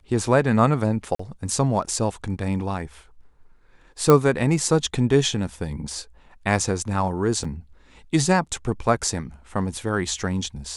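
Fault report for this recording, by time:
0:01.15–0:01.19: drop-out 44 ms
0:04.10: click −4 dBFS
0:07.44–0:07.45: drop-out 5.1 ms

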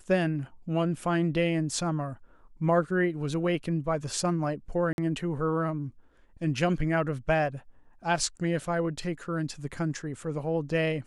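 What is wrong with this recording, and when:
0:04.93–0:04.98: drop-out 51 ms

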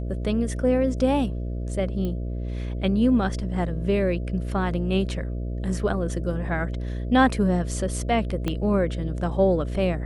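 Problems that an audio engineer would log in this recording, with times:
mains buzz 60 Hz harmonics 11 −29 dBFS
0:02.05: click −19 dBFS
0:08.48: click −13 dBFS

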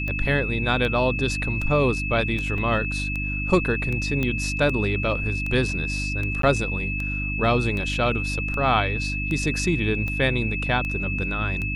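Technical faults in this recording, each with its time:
mains hum 50 Hz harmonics 6 −29 dBFS
scratch tick 78 rpm −18 dBFS
whistle 2,600 Hz −28 dBFS
0:02.58: drop-out 2.2 ms
0:04.23: click −13 dBFS
0:06.42–0:06.43: drop-out 13 ms

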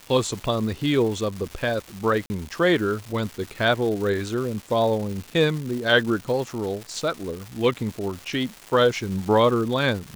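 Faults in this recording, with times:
surface crackle 510 per second −31 dBFS
0:02.26–0:02.30: drop-out 40 ms

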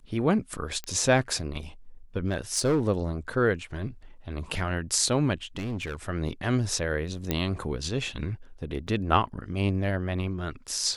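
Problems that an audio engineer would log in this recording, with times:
0:00.84: click −20 dBFS
0:02.27–0:02.81: clipping −19.5 dBFS
0:05.45–0:05.95: clipping −28 dBFS
0:07.31: click −11 dBFS
0:08.87–0:08.88: drop-out 6.4 ms

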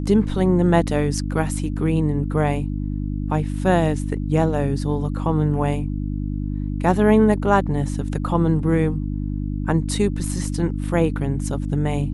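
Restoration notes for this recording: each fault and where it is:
mains hum 50 Hz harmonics 6 −25 dBFS

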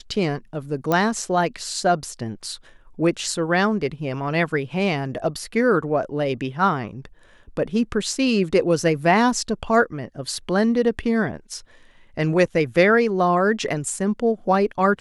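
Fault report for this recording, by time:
0:00.92: click −8 dBFS

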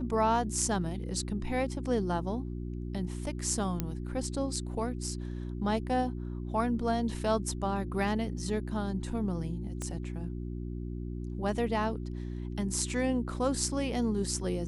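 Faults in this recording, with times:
mains hum 60 Hz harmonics 6 −37 dBFS
0:03.80: click −16 dBFS
0:09.82: click −23 dBFS

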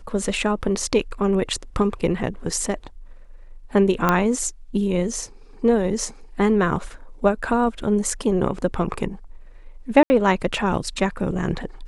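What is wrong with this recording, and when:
0:04.09: click −5 dBFS
0:10.03–0:10.10: drop-out 70 ms

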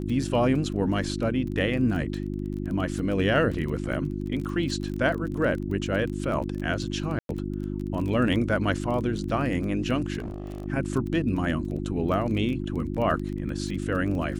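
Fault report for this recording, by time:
surface crackle 20 per second −32 dBFS
mains hum 50 Hz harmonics 7 −31 dBFS
0:07.19–0:07.29: drop-out 102 ms
0:10.18–0:10.66: clipping −29.5 dBFS

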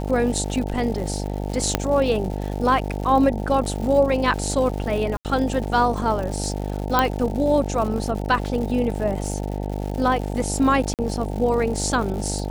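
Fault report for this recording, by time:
mains buzz 50 Hz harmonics 18 −27 dBFS
surface crackle 190 per second −30 dBFS
0:01.75: click −3 dBFS
0:05.17–0:05.25: drop-out 78 ms
0:06.99: click −4 dBFS
0:10.94–0:10.99: drop-out 48 ms

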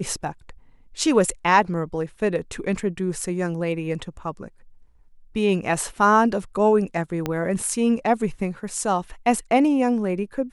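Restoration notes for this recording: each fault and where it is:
0:07.26: click −11 dBFS

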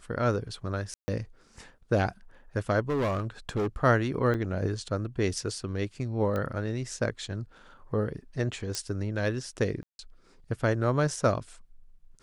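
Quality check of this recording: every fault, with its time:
0:00.94–0:01.08: drop-out 140 ms
0:02.89–0:03.67: clipping −24.5 dBFS
0:04.34–0:04.35: drop-out 5.3 ms
0:06.36: click −20 dBFS
0:08.75: click −16 dBFS
0:09.83–0:09.99: drop-out 161 ms

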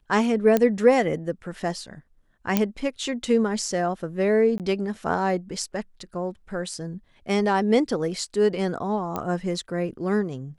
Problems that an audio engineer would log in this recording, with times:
0:00.57: click −8 dBFS
0:02.57: click −6 dBFS
0:04.58–0:04.60: drop-out 18 ms
0:09.16: click −14 dBFS

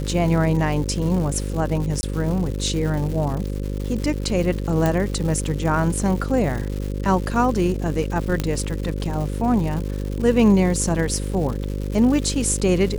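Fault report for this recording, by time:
mains buzz 50 Hz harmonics 11 −26 dBFS
surface crackle 300 per second −29 dBFS
0:02.01–0:02.03: drop-out 20 ms
0:04.86: click
0:08.40: click −8 dBFS

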